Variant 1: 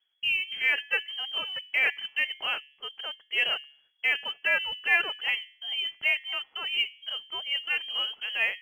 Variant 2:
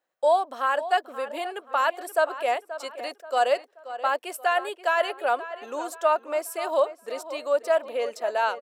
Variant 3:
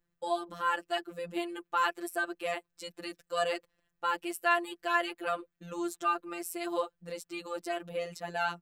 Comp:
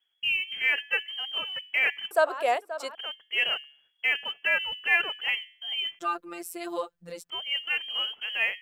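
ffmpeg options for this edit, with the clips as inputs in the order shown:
-filter_complex "[0:a]asplit=3[a][b][c];[a]atrim=end=2.112[d];[1:a]atrim=start=2.108:end=2.952[e];[b]atrim=start=2.948:end=5.992[f];[2:a]atrim=start=5.988:end=7.302[g];[c]atrim=start=7.298[h];[d][e]acrossfade=d=0.004:c1=hsin:c2=hsin[i];[i][f]acrossfade=d=0.004:c1=hsin:c2=hsin[j];[j][g]acrossfade=d=0.004:c1=hsin:c2=hsin[k];[k][h]acrossfade=d=0.004:c1=hsin:c2=hsin"

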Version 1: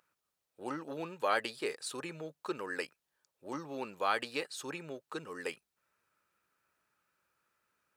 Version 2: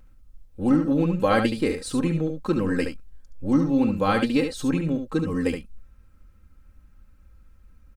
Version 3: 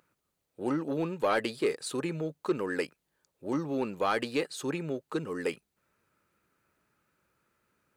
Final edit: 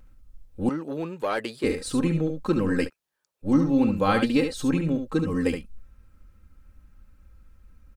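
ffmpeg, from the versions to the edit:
-filter_complex "[1:a]asplit=3[a][b][c];[a]atrim=end=0.692[d];[2:a]atrim=start=0.688:end=1.642[e];[b]atrim=start=1.638:end=2.9[f];[0:a]atrim=start=2.84:end=3.48[g];[c]atrim=start=3.42[h];[d][e]acrossfade=d=0.004:c1=hsin:c2=hsin[i];[i][f]acrossfade=d=0.004:c1=hsin:c2=hsin[j];[j][g]acrossfade=d=0.06:c1=tri:c2=tri[k];[k][h]acrossfade=d=0.06:c1=tri:c2=tri"

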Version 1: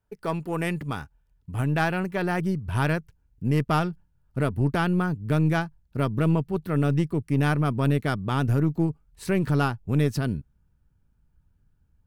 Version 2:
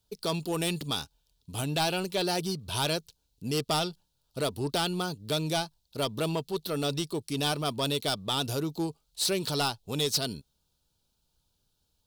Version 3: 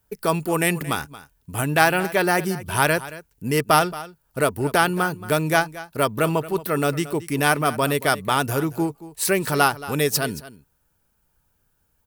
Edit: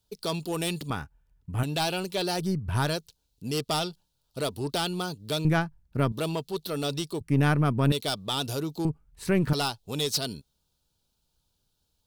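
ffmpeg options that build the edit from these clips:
-filter_complex "[0:a]asplit=5[a][b][c][d][e];[1:a]asplit=6[f][g][h][i][j][k];[f]atrim=end=0.902[l];[a]atrim=start=0.898:end=1.632[m];[g]atrim=start=1.628:end=2.57[n];[b]atrim=start=2.33:end=2.97[o];[h]atrim=start=2.73:end=5.452[p];[c]atrim=start=5.448:end=6.122[q];[i]atrim=start=6.118:end=7.212[r];[d]atrim=start=7.208:end=7.922[s];[j]atrim=start=7.918:end=8.852[t];[e]atrim=start=8.848:end=9.532[u];[k]atrim=start=9.528[v];[l][m]acrossfade=d=0.004:c1=hsin:c2=hsin[w];[w][n]acrossfade=d=0.004:c1=hsin:c2=hsin[x];[x][o]acrossfade=d=0.24:c1=tri:c2=tri[y];[y][p]acrossfade=d=0.24:c1=tri:c2=tri[z];[z][q]acrossfade=d=0.004:c1=hsin:c2=hsin[aa];[aa][r]acrossfade=d=0.004:c1=hsin:c2=hsin[ab];[ab][s]acrossfade=d=0.004:c1=hsin:c2=hsin[ac];[ac][t]acrossfade=d=0.004:c1=hsin:c2=hsin[ad];[ad][u]acrossfade=d=0.004:c1=hsin:c2=hsin[ae];[ae][v]acrossfade=d=0.004:c1=hsin:c2=hsin"

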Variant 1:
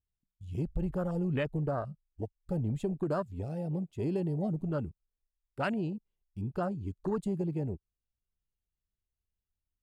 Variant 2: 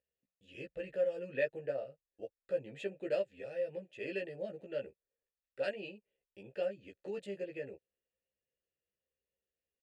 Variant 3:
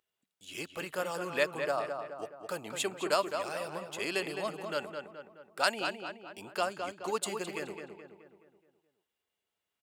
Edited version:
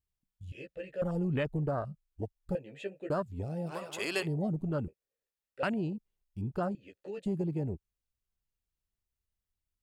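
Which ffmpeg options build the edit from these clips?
-filter_complex "[1:a]asplit=4[a][b][c][d];[0:a]asplit=6[e][f][g][h][i][j];[e]atrim=end=0.522[k];[a]atrim=start=0.518:end=1.022[l];[f]atrim=start=1.018:end=2.552[m];[b]atrim=start=2.548:end=3.102[n];[g]atrim=start=3.098:end=3.72[o];[2:a]atrim=start=3.66:end=4.28[p];[h]atrim=start=4.22:end=4.882[q];[c]atrim=start=4.878:end=5.632[r];[i]atrim=start=5.628:end=6.752[s];[d]atrim=start=6.748:end=7.252[t];[j]atrim=start=7.248[u];[k][l]acrossfade=d=0.004:c1=hsin:c2=hsin[v];[v][m]acrossfade=d=0.004:c1=hsin:c2=hsin[w];[w][n]acrossfade=d=0.004:c1=hsin:c2=hsin[x];[x][o]acrossfade=d=0.004:c1=hsin:c2=hsin[y];[y][p]acrossfade=d=0.06:c1=tri:c2=tri[z];[z][q]acrossfade=d=0.06:c1=tri:c2=tri[aa];[aa][r]acrossfade=d=0.004:c1=hsin:c2=hsin[ab];[ab][s]acrossfade=d=0.004:c1=hsin:c2=hsin[ac];[ac][t]acrossfade=d=0.004:c1=hsin:c2=hsin[ad];[ad][u]acrossfade=d=0.004:c1=hsin:c2=hsin"

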